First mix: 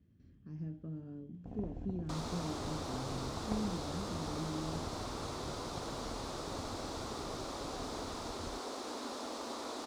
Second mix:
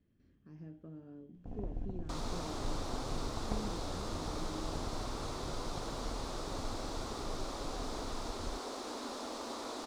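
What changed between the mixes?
speech: add tone controls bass -10 dB, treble -4 dB; master: remove HPF 56 Hz 12 dB/oct

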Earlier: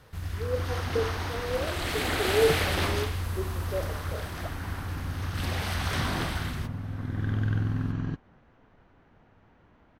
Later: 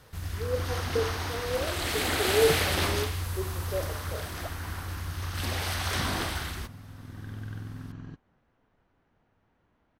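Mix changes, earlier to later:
second sound -10.5 dB; master: add tone controls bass -1 dB, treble +5 dB

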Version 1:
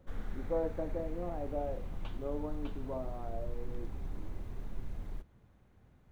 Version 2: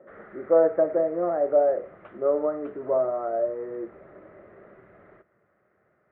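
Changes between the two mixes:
speech +11.0 dB; master: add speaker cabinet 240–2100 Hz, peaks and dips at 260 Hz -9 dB, 380 Hz +6 dB, 610 Hz +10 dB, 900 Hz -6 dB, 1300 Hz +10 dB, 1900 Hz +9 dB

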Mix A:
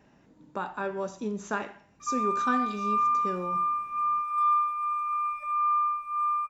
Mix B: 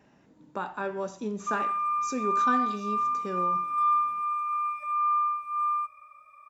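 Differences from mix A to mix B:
background: entry -0.60 s; master: add HPF 81 Hz 6 dB/oct

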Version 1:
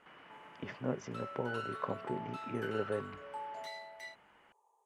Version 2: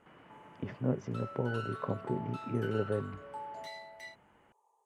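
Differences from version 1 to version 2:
speech: add tilt shelf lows +6 dB, about 700 Hz; master: add bell 110 Hz +4.5 dB 0.69 oct

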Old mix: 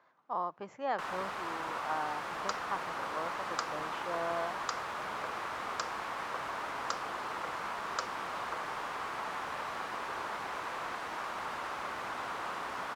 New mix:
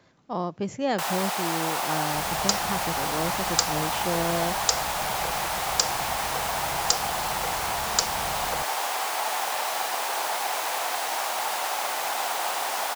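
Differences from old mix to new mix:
first sound: add resonant high-pass 780 Hz, resonance Q 3.4; master: remove band-pass 1100 Hz, Q 1.9

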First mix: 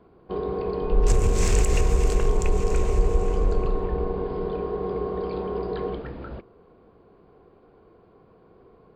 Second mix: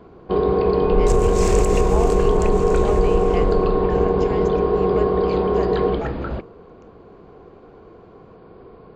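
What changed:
speech: unmuted; first sound +10.0 dB

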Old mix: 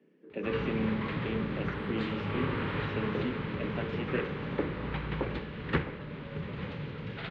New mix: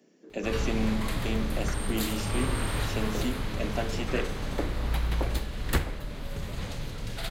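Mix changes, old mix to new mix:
speech +3.5 dB; master: remove speaker cabinet 120–2900 Hz, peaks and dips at 160 Hz +6 dB, 440 Hz +4 dB, 690 Hz -9 dB

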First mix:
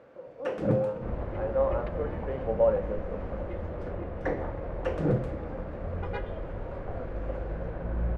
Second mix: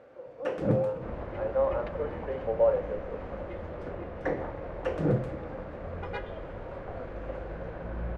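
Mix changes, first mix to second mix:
speech: add steep high-pass 270 Hz 96 dB/oct; second sound: add tilt +1.5 dB/oct

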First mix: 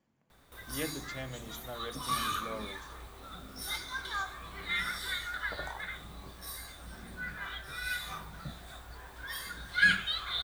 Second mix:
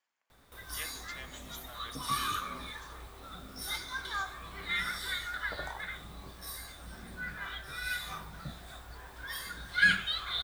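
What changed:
speech: add HPF 1200 Hz 12 dB/oct; master: remove notch 5200 Hz, Q 27

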